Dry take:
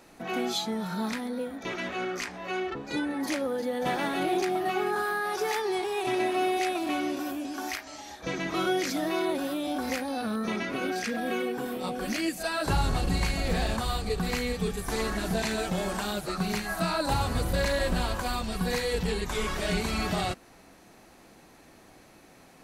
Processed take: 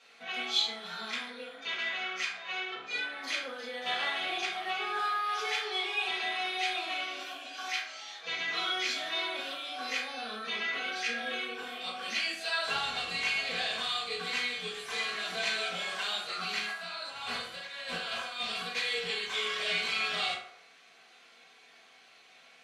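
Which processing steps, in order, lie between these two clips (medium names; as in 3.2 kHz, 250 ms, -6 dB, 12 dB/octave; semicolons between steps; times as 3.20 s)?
differentiator; 16.71–18.75 s: compressor with a negative ratio -45 dBFS, ratio -0.5; resonant low-pass 3.1 kHz, resonance Q 1.9; reverberation RT60 0.65 s, pre-delay 3 ms, DRR -9 dB; trim +1.5 dB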